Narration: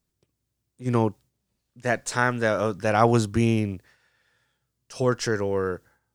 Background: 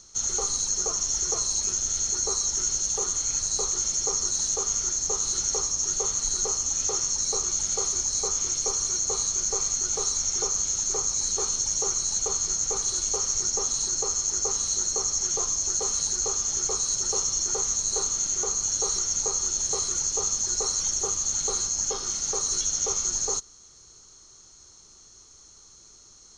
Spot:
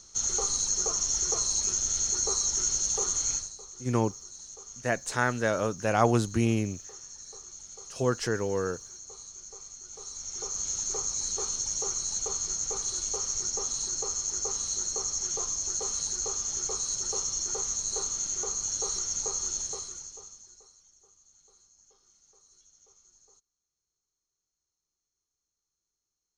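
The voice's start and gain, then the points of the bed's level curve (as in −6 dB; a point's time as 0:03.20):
3.00 s, −4.0 dB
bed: 0:03.33 −1.5 dB
0:03.56 −19 dB
0:09.84 −19 dB
0:10.69 −5 dB
0:19.56 −5 dB
0:20.85 −34.5 dB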